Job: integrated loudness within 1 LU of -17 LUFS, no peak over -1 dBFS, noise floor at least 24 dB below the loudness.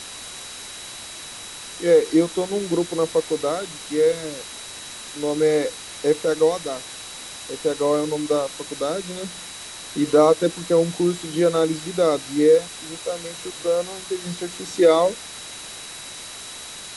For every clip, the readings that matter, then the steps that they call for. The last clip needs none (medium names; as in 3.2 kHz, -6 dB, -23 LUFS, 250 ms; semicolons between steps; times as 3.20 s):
steady tone 3.9 kHz; tone level -41 dBFS; noise floor -37 dBFS; noise floor target -46 dBFS; loudness -22.0 LUFS; peak level -4.5 dBFS; loudness target -17.0 LUFS
-> band-stop 3.9 kHz, Q 30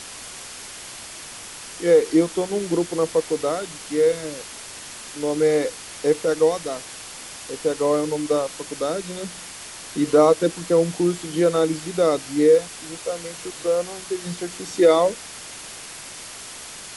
steady tone not found; noise floor -38 dBFS; noise floor target -46 dBFS
-> noise reduction 8 dB, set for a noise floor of -38 dBFS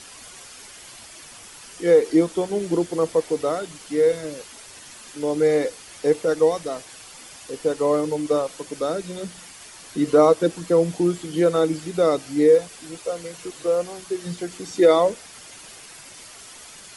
noise floor -43 dBFS; noise floor target -46 dBFS
-> noise reduction 6 dB, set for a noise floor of -43 dBFS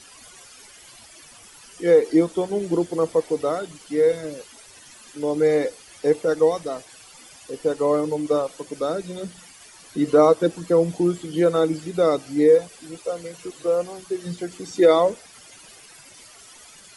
noise floor -47 dBFS; loudness -21.5 LUFS; peak level -4.5 dBFS; loudness target -17.0 LUFS
-> trim +4.5 dB; peak limiter -1 dBFS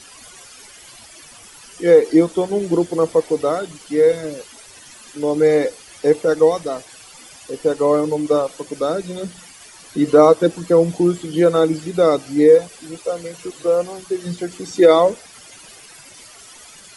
loudness -17.5 LUFS; peak level -1.0 dBFS; noise floor -43 dBFS